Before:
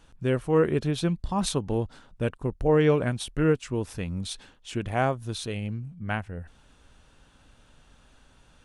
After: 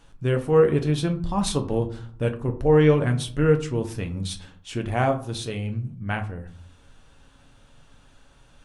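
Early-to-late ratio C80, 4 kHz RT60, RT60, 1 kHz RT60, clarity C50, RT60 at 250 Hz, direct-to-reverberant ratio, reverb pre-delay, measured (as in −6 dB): 17.5 dB, 0.25 s, 0.55 s, 0.50 s, 14.0 dB, 0.75 s, 5.0 dB, 7 ms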